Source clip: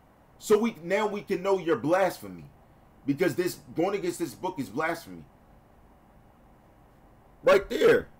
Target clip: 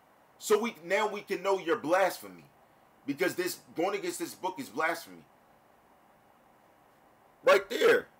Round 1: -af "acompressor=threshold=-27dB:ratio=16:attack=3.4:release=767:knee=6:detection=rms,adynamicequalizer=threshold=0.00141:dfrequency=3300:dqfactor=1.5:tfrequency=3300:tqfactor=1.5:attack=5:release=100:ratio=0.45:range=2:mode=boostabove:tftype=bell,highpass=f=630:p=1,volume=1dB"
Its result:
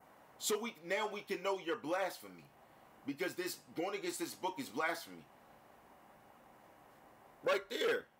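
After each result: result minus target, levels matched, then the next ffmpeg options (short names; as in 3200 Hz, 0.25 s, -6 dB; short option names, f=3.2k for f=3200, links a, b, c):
compressor: peak gain reduction +12 dB; 4000 Hz band +4.0 dB
-af "adynamicequalizer=threshold=0.00141:dfrequency=3300:dqfactor=1.5:tfrequency=3300:tqfactor=1.5:attack=5:release=100:ratio=0.45:range=2:mode=boostabove:tftype=bell,highpass=f=630:p=1,volume=1dB"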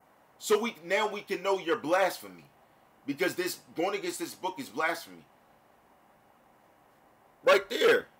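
4000 Hz band +3.0 dB
-af "highpass=f=630:p=1,volume=1dB"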